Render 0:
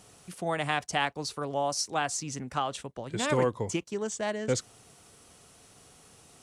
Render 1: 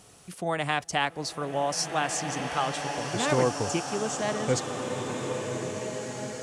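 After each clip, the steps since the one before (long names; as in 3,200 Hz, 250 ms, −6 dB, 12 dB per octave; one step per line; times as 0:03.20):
slow-attack reverb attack 1,980 ms, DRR 3.5 dB
level +1.5 dB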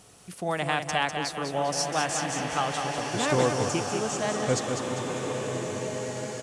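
repeating echo 199 ms, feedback 45%, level −6.5 dB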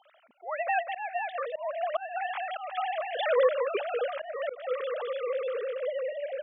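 three sine waves on the formant tracks
volume swells 258 ms
high-pass filter 230 Hz 12 dB per octave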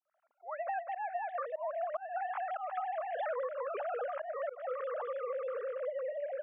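fade in at the beginning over 0.98 s
flat-topped band-pass 930 Hz, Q 0.91
downward compressor 10 to 1, threshold −33 dBFS, peak gain reduction 11.5 dB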